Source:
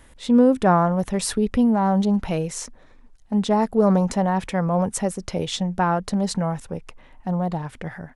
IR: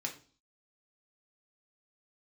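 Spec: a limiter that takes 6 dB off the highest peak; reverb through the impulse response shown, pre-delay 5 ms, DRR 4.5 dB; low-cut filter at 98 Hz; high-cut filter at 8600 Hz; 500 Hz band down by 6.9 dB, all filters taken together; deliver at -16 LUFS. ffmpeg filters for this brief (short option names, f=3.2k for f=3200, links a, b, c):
-filter_complex "[0:a]highpass=98,lowpass=8.6k,equalizer=f=500:t=o:g=-8.5,alimiter=limit=-15.5dB:level=0:latency=1,asplit=2[a][b];[1:a]atrim=start_sample=2205,adelay=5[c];[b][c]afir=irnorm=-1:irlink=0,volume=-5.5dB[d];[a][d]amix=inputs=2:normalize=0,volume=8.5dB"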